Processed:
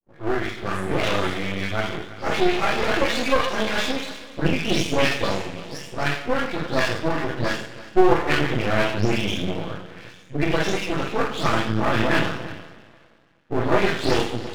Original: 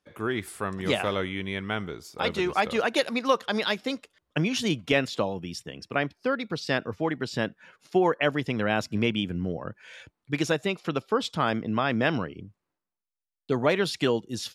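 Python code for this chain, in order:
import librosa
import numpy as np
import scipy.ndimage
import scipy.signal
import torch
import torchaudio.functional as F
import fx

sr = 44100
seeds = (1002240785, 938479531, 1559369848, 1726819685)

p1 = fx.spec_delay(x, sr, highs='late', ms=279)
p2 = fx.backlash(p1, sr, play_db=-34.0)
p3 = p1 + (p2 * 10.0 ** (-8.0 / 20.0))
p4 = scipy.signal.sosfilt(scipy.signal.butter(2, 6100.0, 'lowpass', fs=sr, output='sos'), p3)
p5 = p4 + fx.echo_single(p4, sr, ms=334, db=-17.5, dry=0)
p6 = fx.rev_double_slope(p5, sr, seeds[0], early_s=0.56, late_s=2.4, knee_db=-18, drr_db=-7.0)
p7 = np.maximum(p6, 0.0)
y = p7 * 10.0 ** (-1.0 / 20.0)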